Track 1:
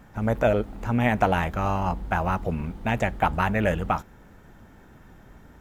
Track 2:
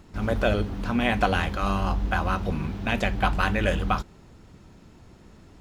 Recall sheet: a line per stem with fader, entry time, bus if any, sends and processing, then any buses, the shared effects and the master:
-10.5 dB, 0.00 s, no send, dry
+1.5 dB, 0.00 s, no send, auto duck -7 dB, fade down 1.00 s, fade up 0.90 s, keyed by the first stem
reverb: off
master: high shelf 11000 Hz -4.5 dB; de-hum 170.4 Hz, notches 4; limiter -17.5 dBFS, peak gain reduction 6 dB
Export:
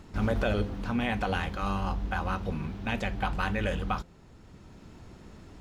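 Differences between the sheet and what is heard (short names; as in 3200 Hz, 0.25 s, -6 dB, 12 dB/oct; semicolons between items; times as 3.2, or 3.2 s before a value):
stem 1 -10.5 dB -> -19.5 dB; stem 2: polarity flipped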